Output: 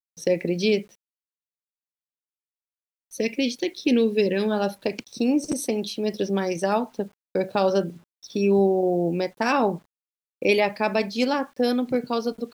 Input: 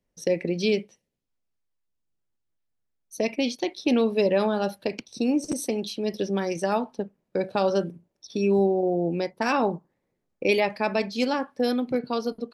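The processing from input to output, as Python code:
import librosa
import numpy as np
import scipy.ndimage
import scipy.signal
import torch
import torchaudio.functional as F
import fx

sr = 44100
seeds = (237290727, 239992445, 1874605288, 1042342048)

y = fx.spec_box(x, sr, start_s=1.96, length_s=2.55, low_hz=540.0, high_hz=1500.0, gain_db=-12)
y = fx.quant_dither(y, sr, seeds[0], bits=10, dither='none')
y = y * librosa.db_to_amplitude(2.0)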